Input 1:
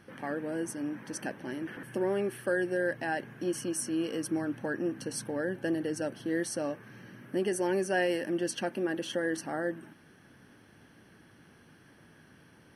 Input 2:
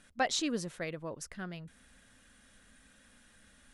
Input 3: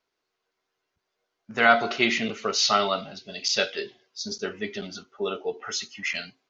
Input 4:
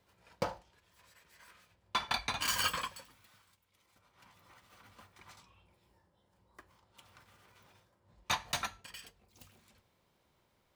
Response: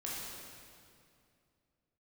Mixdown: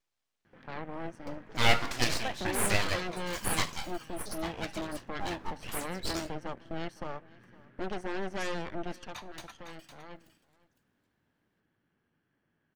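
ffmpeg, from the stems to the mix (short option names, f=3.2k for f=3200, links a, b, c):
-filter_complex "[0:a]lowpass=3.5k,aeval=exprs='0.15*(cos(1*acos(clip(val(0)/0.15,-1,1)))-cos(1*PI/2))+0.0473*(cos(8*acos(clip(val(0)/0.15,-1,1)))-cos(8*PI/2))':c=same,adelay=450,volume=-9.5dB,afade=t=out:st=8.95:d=0.22:silence=0.298538,asplit=2[a][b];[b]volume=-22.5dB[c];[1:a]lowpass=3.7k,adelay=2050,volume=-7dB[d];[2:a]lowshelf=f=190:g=-8.5,aeval=exprs='abs(val(0))':c=same,volume=-3dB[e];[3:a]adelay=850,volume=-12.5dB,asplit=2[f][g];[g]volume=-9dB[h];[c][h]amix=inputs=2:normalize=0,aecho=0:1:507:1[i];[a][d][e][f][i]amix=inputs=5:normalize=0"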